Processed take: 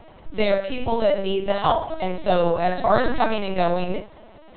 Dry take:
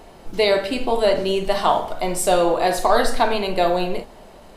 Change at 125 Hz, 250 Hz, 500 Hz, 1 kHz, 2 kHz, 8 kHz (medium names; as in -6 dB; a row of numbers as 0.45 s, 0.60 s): +2.5 dB, -1.0 dB, -2.5 dB, -2.5 dB, -3.0 dB, under -40 dB